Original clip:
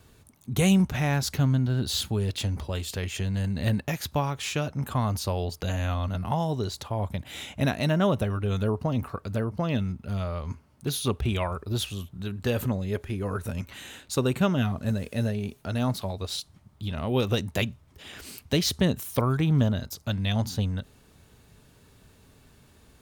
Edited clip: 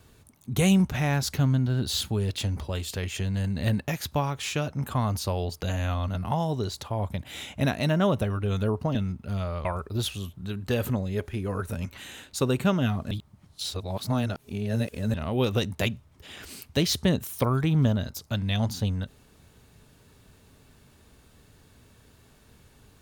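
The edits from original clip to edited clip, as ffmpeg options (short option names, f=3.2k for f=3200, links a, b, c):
-filter_complex "[0:a]asplit=5[a][b][c][d][e];[a]atrim=end=8.952[f];[b]atrim=start=9.748:end=10.452[g];[c]atrim=start=11.408:end=14.872[h];[d]atrim=start=14.868:end=16.902,asetpts=PTS-STARTPTS,areverse[i];[e]atrim=start=16.898[j];[f][g]acrossfade=d=0.004:c1=hsin:c2=hsin[k];[k][h]acrossfade=d=0.004:c1=hsin:c2=hsin[l];[l][i]acrossfade=d=0.004:c1=hsin:c2=hsin[m];[m][j]acrossfade=d=0.004:c1=hsin:c2=hsin"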